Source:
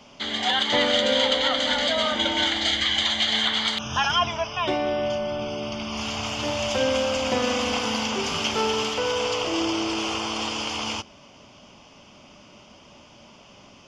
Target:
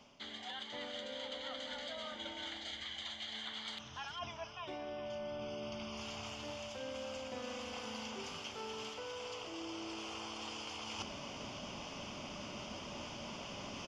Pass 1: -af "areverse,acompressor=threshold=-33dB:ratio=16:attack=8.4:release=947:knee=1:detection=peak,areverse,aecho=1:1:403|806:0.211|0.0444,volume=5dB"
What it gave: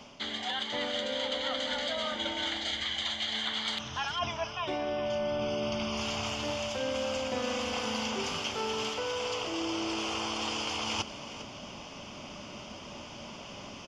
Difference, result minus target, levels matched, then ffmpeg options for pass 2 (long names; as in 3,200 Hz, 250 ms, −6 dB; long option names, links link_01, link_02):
downward compressor: peak gain reduction −11 dB
-af "areverse,acompressor=threshold=-45dB:ratio=16:attack=8.4:release=947:knee=1:detection=peak,areverse,aecho=1:1:403|806:0.211|0.0444,volume=5dB"